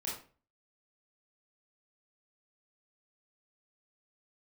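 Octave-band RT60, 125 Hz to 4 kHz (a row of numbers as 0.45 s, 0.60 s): 0.50 s, 0.45 s, 0.40 s, 0.35 s, 0.35 s, 0.30 s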